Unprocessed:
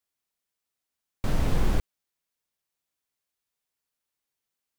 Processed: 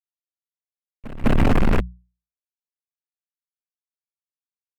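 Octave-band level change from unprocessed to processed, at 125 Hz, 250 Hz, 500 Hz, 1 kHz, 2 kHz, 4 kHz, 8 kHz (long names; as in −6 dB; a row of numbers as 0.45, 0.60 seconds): +7.5, +12.0, +10.0, +10.0, +10.5, +4.5, −2.0 decibels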